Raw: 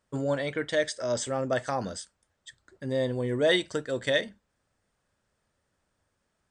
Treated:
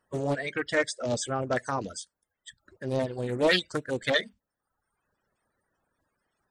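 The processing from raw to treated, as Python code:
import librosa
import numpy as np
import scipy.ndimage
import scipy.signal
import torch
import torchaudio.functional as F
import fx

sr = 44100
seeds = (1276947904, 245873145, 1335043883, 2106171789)

y = fx.spec_quant(x, sr, step_db=30)
y = fx.dereverb_blind(y, sr, rt60_s=0.86)
y = fx.doppler_dist(y, sr, depth_ms=0.4)
y = y * 10.0 ** (1.5 / 20.0)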